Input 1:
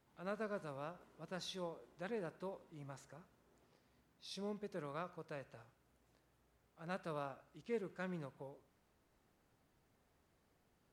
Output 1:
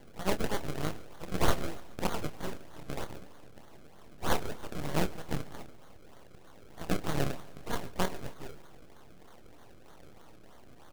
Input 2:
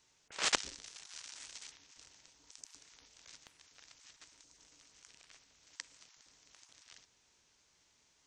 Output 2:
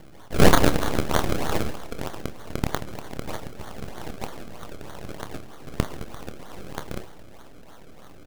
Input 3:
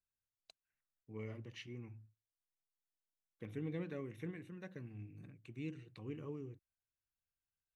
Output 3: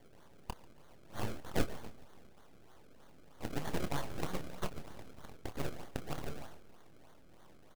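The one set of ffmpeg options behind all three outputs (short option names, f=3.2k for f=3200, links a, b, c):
-filter_complex "[0:a]highpass=1.1k,aemphasis=mode=production:type=50fm,acrusher=samples=33:mix=1:aa=0.000001:lfo=1:lforange=33:lforate=3.2,aeval=exprs='abs(val(0))':c=same,asplit=2[a][b];[b]adelay=27,volume=-11dB[c];[a][c]amix=inputs=2:normalize=0,aecho=1:1:141|282|423|564:0.0841|0.0488|0.0283|0.0164,alimiter=level_in=22.5dB:limit=-1dB:release=50:level=0:latency=1,volume=-1dB"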